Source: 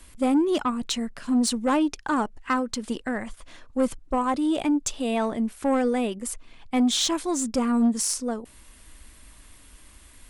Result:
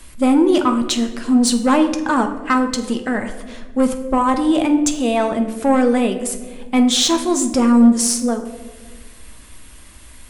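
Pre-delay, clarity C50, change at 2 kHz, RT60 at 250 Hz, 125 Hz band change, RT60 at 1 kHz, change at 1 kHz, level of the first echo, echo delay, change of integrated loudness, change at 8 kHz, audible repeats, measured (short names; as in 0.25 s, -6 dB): 9 ms, 10.0 dB, +8.0 dB, 1.9 s, n/a, 1.1 s, +8.0 dB, none, none, +8.5 dB, +8.0 dB, none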